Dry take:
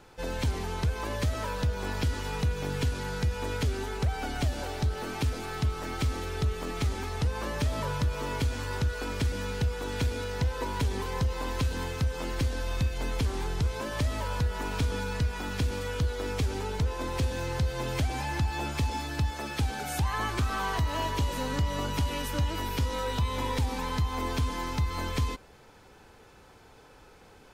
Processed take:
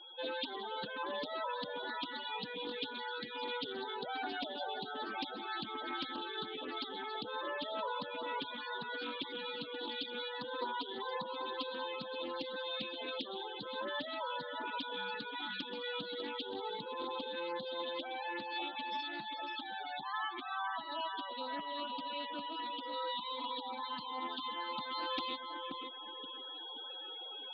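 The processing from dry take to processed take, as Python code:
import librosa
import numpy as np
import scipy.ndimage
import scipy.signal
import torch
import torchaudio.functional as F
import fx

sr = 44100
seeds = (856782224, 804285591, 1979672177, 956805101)

y = fx.cabinet(x, sr, low_hz=250.0, low_slope=24, high_hz=6300.0, hz=(260.0, 420.0, 3600.0, 5800.0), db=(-4, -6, 8, -9))
y = fx.echo_filtered(y, sr, ms=528, feedback_pct=32, hz=2600.0, wet_db=-7.0)
y = y + 10.0 ** (-53.0 / 20.0) * np.sin(2.0 * np.pi * 3300.0 * np.arange(len(y)) / sr)
y = fx.high_shelf(y, sr, hz=4000.0, db=6.5)
y = fx.spec_topn(y, sr, count=16)
y = fx.rider(y, sr, range_db=10, speed_s=2.0)
y = fx.doppler_dist(y, sr, depth_ms=0.22)
y = y * librosa.db_to_amplitude(-3.5)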